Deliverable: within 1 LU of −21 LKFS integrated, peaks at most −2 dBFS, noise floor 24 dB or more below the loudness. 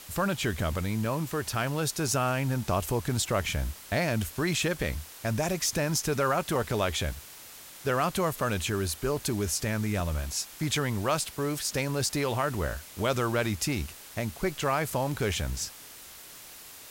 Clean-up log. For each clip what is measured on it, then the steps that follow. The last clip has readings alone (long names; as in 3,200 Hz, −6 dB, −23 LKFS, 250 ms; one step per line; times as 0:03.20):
number of dropouts 6; longest dropout 1.8 ms; background noise floor −47 dBFS; target noise floor −54 dBFS; integrated loudness −29.5 LKFS; sample peak −14.5 dBFS; target loudness −21.0 LKFS
→ repair the gap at 0:01.05/0:02.08/0:03.43/0:06.63/0:09.17/0:10.00, 1.8 ms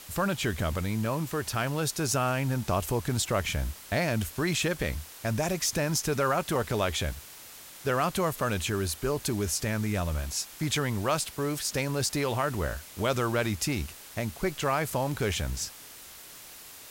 number of dropouts 0; background noise floor −47 dBFS; target noise floor −54 dBFS
→ broadband denoise 7 dB, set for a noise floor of −47 dBFS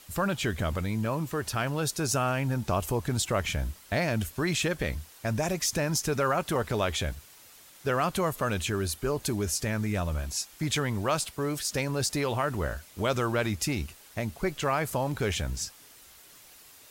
background noise floor −53 dBFS; target noise floor −54 dBFS
→ broadband denoise 6 dB, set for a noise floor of −53 dBFS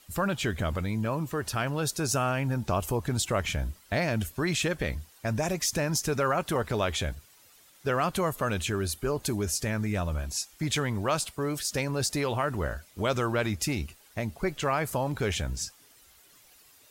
background noise floor −58 dBFS; integrated loudness −29.5 LKFS; sample peak −14.5 dBFS; target loudness −21.0 LKFS
→ level +8.5 dB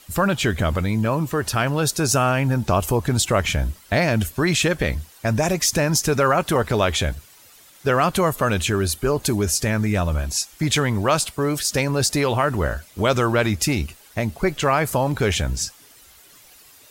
integrated loudness −21.0 LKFS; sample peak −6.0 dBFS; background noise floor −50 dBFS